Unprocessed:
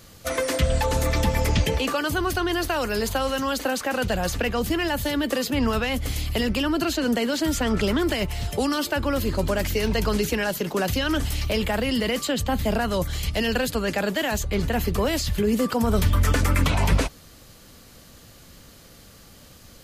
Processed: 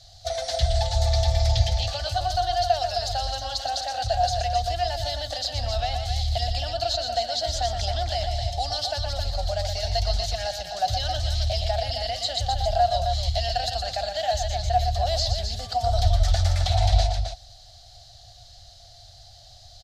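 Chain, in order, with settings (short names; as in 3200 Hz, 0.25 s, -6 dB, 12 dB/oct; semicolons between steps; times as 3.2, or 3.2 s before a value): EQ curve 110 Hz 0 dB, 200 Hz -29 dB, 440 Hz -30 dB, 720 Hz +11 dB, 1000 Hz -21 dB, 1700 Hz -11 dB, 2500 Hz -14 dB, 4000 Hz +7 dB, 5600 Hz +1 dB, 12000 Hz -21 dB; on a send: loudspeakers at several distances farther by 41 m -7 dB, 91 m -7 dB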